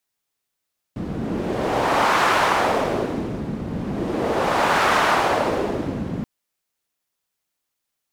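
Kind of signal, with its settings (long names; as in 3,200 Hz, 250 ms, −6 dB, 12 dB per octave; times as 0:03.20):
wind from filtered noise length 5.28 s, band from 190 Hz, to 1,100 Hz, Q 1.3, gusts 2, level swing 10 dB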